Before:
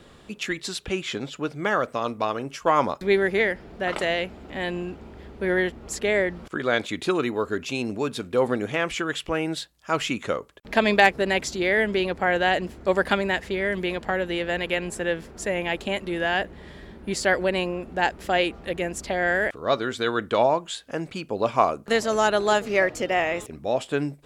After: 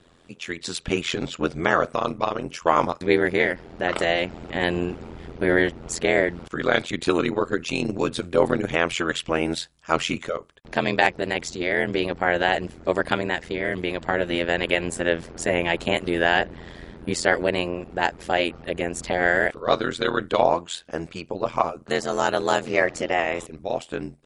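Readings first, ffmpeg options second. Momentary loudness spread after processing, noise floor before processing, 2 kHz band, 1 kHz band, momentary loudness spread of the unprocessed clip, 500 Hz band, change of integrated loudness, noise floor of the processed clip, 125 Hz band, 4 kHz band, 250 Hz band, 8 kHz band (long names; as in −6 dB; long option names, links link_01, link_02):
9 LU, −49 dBFS, +1.0 dB, +0.5 dB, 9 LU, +0.5 dB, +1.0 dB, −51 dBFS, +2.0 dB, +1.0 dB, +1.5 dB, +1.0 dB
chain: -af "tremolo=f=85:d=1,dynaudnorm=framelen=170:gausssize=9:maxgain=15dB,volume=-2dB" -ar 24000 -c:a libmp3lame -b:a 48k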